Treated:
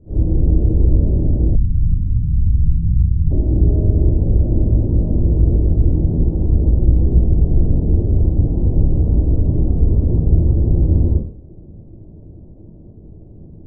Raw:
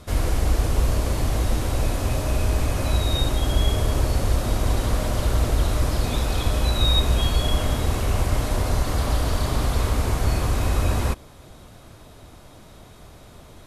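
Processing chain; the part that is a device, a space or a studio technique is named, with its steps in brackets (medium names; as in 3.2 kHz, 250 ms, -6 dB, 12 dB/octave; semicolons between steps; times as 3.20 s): next room (low-pass 420 Hz 24 dB/octave; reverberation RT60 0.50 s, pre-delay 27 ms, DRR -8.5 dB); 1.55–3.31 s: inverse Chebyshev low-pass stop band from 630 Hz, stop band 60 dB; trim -2 dB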